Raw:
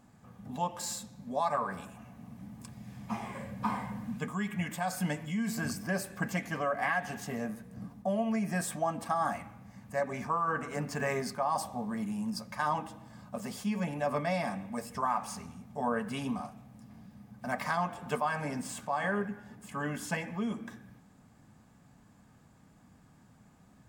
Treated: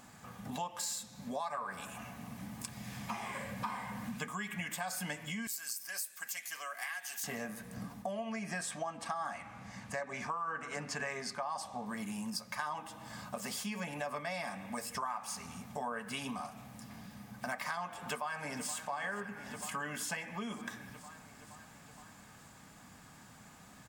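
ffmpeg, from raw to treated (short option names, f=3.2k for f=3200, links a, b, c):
-filter_complex "[0:a]asettb=1/sr,asplit=3[a][b][c];[a]atrim=end=5.474[d];[b]atrim=start=5.47:end=7.24,asetpts=PTS-STARTPTS,afade=t=in:d=0.004:c=qsin,afade=t=out:st=1.766:d=0.004:c=qsin,aderivative[e];[c]atrim=start=7.236[f];[d][e]acrossfade=d=0.004:c1=hsin:c2=qsin[g];[g][f]acrossfade=d=0.004:c1=qsin:c2=hsin,asettb=1/sr,asplit=3[h][i][j];[h]atrim=end=8.114[k];[i]atrim=start=8.11:end=11.86,asetpts=PTS-STARTPTS,afade=t=in:d=0.004:c=qsin,afade=t=out:st=3.746:d=0.004:c=qsin,lowpass=7.8k[l];[j]atrim=start=11.856[m];[k][l]acrossfade=d=0.004:c1=hsin:c2=qsin[n];[n][m]acrossfade=d=0.004:c1=qsin:c2=hsin,asplit=2[o][p];[p]afade=t=in:st=18:d=0.01,afade=t=out:st=18.73:d=0.01,aecho=0:1:470|940|1410|1880|2350|2820|3290|3760:0.158489|0.110943|0.0776598|0.0543618|0.0380533|0.0266373|0.0186461|0.0130523[q];[o][q]amix=inputs=2:normalize=0,tiltshelf=f=730:g=-6.5,acompressor=threshold=-45dB:ratio=4,volume=6.5dB"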